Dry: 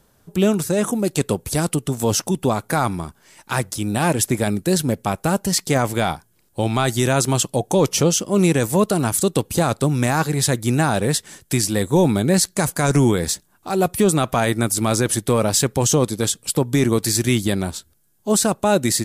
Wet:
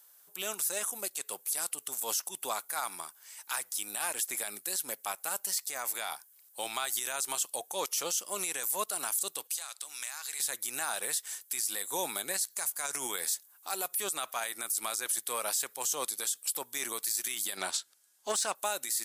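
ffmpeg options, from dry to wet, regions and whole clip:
-filter_complex "[0:a]asettb=1/sr,asplit=3[a][b][c];[a]atrim=end=5.634[d];[b]atrim=start=5.63:end=6.12,asetpts=PTS-STARTPTS,afade=t=in:d=0.004:c=qsin,afade=t=out:st=0.486:d=0.004:c=qsin,bandreject=f=3.1k:w=12,acompressor=threshold=-22dB:ratio=3:attack=3.2:release=140:knee=1:detection=peak[e];[c]atrim=start=6.116[f];[d][e]acrossfade=d=0.004:c1=hsin:c2=qsin[g];[g][f]acrossfade=d=0.004:c1=qsin:c2=hsin,asettb=1/sr,asplit=3[h][i][j];[h]atrim=end=9.474[k];[i]atrim=start=9.47:end=10.4,asetpts=PTS-STARTPTS,afade=t=in:d=0.004:c=qsin,afade=t=out:st=0.926:d=0.004:c=qsin,bandpass=f=4.6k:t=q:w=0.55,acompressor=threshold=-31dB:ratio=10:attack=3.2:release=140:knee=1:detection=peak[l];[j]atrim=start=10.396[m];[k][l]acrossfade=d=0.004:c1=hsin:c2=qsin[n];[n][m]acrossfade=d=0.004:c1=qsin:c2=hsin,asettb=1/sr,asplit=3[o][p][q];[o]atrim=end=17.574[r];[p]atrim=start=17.57:end=18.55,asetpts=PTS-STARTPTS,afade=t=in:d=0.004:c=qsin,afade=t=out:st=0.976:d=0.004:c=qsin,lowpass=6k,acontrast=75[s];[q]atrim=start=18.546[t];[r][s]acrossfade=d=0.004:c1=hsin:c2=qsin[u];[u][t]acrossfade=d=0.004:c1=qsin:c2=hsin,highpass=960,aemphasis=mode=production:type=50fm,alimiter=limit=-14dB:level=0:latency=1:release=73,volume=-6.5dB"

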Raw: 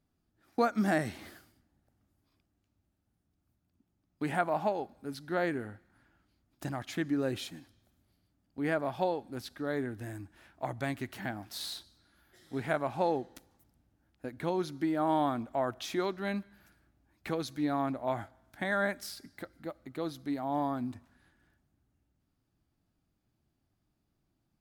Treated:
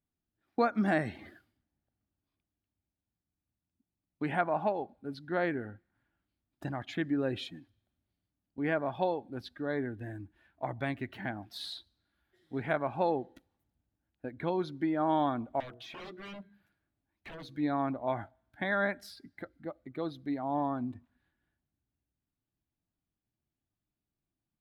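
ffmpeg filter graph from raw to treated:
-filter_complex "[0:a]asettb=1/sr,asplit=3[a][b][c];[a]atrim=end=15.604[d];[b]atrim=start=15.6:end=17.49,asetpts=PTS-STARTPTS,afade=t=in:d=0.004:c=qsin,afade=t=out:st=1.886:d=0.004:c=qsin,bandreject=f=60:t=h:w=6,bandreject=f=120:t=h:w=6,bandreject=f=180:t=h:w=6,bandreject=f=240:t=h:w=6,bandreject=f=300:t=h:w=6,bandreject=f=360:t=h:w=6,bandreject=f=420:t=h:w=6,bandreject=f=480:t=h:w=6,acrossover=split=2300|5400[e][f][g];[e]acompressor=threshold=-35dB:ratio=4[h];[f]acompressor=threshold=-47dB:ratio=4[i];[g]acompressor=threshold=-50dB:ratio=4[j];[h][i][j]amix=inputs=3:normalize=0,aeval=exprs='0.0106*(abs(mod(val(0)/0.0106+3,4)-2)-1)':c=same[k];[c]atrim=start=17.486[l];[d][k]acrossfade=d=0.004:c1=hsin:c2=qsin[m];[m][l]acrossfade=d=0.004:c1=qsin:c2=hsin,afftdn=nr=12:nf=-50,highshelf=f=4.5k:t=q:w=1.5:g=-6.5,bandreject=f=1.3k:w=21"

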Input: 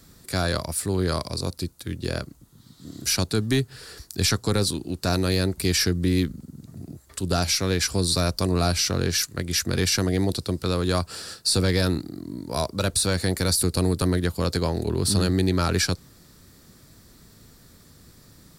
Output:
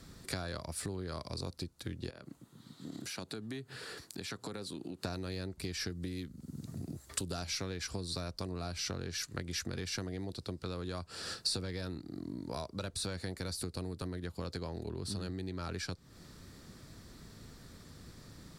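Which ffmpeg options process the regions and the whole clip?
-filter_complex "[0:a]asettb=1/sr,asplit=3[a][b][c];[a]atrim=end=2.104[d];[b]atrim=start=2.1:end=5.05,asetpts=PTS-STARTPTS,afade=t=in:d=0.004:c=qsin,afade=t=out:st=2.946:d=0.004:c=qsin,equalizer=f=5.4k:w=2.4:g=-5.5,acompressor=threshold=-36dB:ratio=6:attack=3.2:release=140:knee=1:detection=peak,highpass=160[e];[c]atrim=start=5.046[f];[d][e]acrossfade=d=0.004:c1=hsin:c2=qsin[g];[g][f]acrossfade=d=0.004:c1=qsin:c2=hsin,asettb=1/sr,asplit=3[h][i][j];[h]atrim=end=5.904[k];[i]atrim=start=5.9:end=7.42,asetpts=PTS-STARTPTS,afade=t=in:d=0.004:c=qsin,afade=t=out:st=1.516:d=0.004:c=qsin,highpass=49,aemphasis=mode=production:type=cd[l];[j]atrim=start=7.416[m];[k][l]acrossfade=d=0.004:c1=hsin:c2=qsin[n];[n][m]acrossfade=d=0.004:c1=qsin:c2=hsin,aemphasis=mode=reproduction:type=75fm,acompressor=threshold=-35dB:ratio=12,highshelf=f=2.8k:g=8,volume=-1.5dB"

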